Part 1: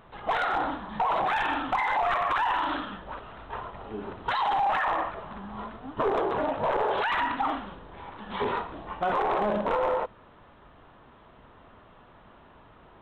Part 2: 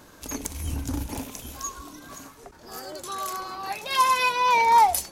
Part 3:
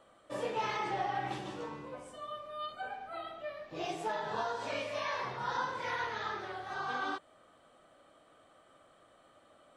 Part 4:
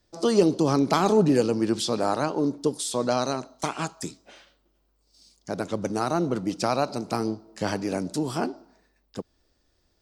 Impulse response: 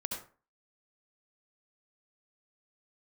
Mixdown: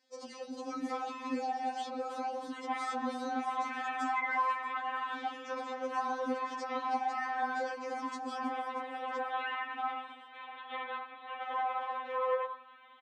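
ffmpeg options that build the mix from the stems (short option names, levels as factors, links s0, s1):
-filter_complex "[0:a]tiltshelf=f=810:g=-7.5,alimiter=limit=0.0944:level=0:latency=1:release=370,flanger=delay=1.9:depth=9:regen=57:speed=0.56:shape=triangular,adelay=2400,volume=1,asplit=2[s0][s1];[s1]volume=0.355[s2];[1:a]lowpass=4500,adelay=400,volume=0.299[s3];[2:a]lowshelf=f=350:g=9.5,aecho=1:1:6.6:0.65,adelay=500,volume=0.596[s4];[3:a]alimiter=limit=0.15:level=0:latency=1,volume=1,asplit=3[s5][s6][s7];[s6]volume=0.1[s8];[s7]apad=whole_len=243057[s9];[s3][s9]sidechaingate=range=0.0224:threshold=0.00126:ratio=16:detection=peak[s10];[s0][s10][s5]amix=inputs=3:normalize=0,highpass=f=190:w=0.5412,highpass=f=190:w=1.3066,equalizer=f=260:t=q:w=4:g=-5,equalizer=f=740:t=q:w=4:g=4,equalizer=f=2200:t=q:w=4:g=5,lowpass=f=7600:w=0.5412,lowpass=f=7600:w=1.3066,alimiter=limit=0.0841:level=0:latency=1:release=30,volume=1[s11];[4:a]atrim=start_sample=2205[s12];[s2][s12]afir=irnorm=-1:irlink=0[s13];[s8]aecho=0:1:316|632|948|1264|1580|1896|2212|2528:1|0.54|0.292|0.157|0.085|0.0459|0.0248|0.0134[s14];[s4][s11][s13][s14]amix=inputs=4:normalize=0,acrossover=split=290|2200[s15][s16][s17];[s15]acompressor=threshold=0.00891:ratio=4[s18];[s16]acompressor=threshold=0.0316:ratio=4[s19];[s17]acompressor=threshold=0.00251:ratio=4[s20];[s18][s19][s20]amix=inputs=3:normalize=0,highpass=77,afftfilt=real='re*3.46*eq(mod(b,12),0)':imag='im*3.46*eq(mod(b,12),0)':win_size=2048:overlap=0.75"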